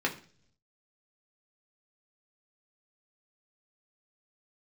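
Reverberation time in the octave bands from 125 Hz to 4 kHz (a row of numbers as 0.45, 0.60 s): 1.0, 0.75, 0.55, 0.40, 0.45, 0.55 s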